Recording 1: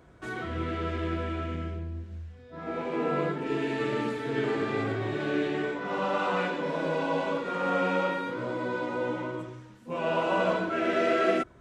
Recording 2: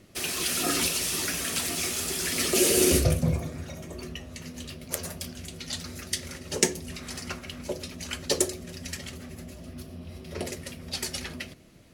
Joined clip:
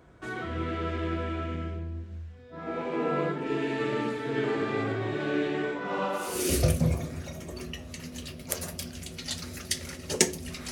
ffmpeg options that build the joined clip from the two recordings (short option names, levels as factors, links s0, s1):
-filter_complex "[0:a]apad=whole_dur=10.71,atrim=end=10.71,atrim=end=6.67,asetpts=PTS-STARTPTS[s0];[1:a]atrim=start=2.45:end=7.13,asetpts=PTS-STARTPTS[s1];[s0][s1]acrossfade=d=0.64:c1=qua:c2=qua"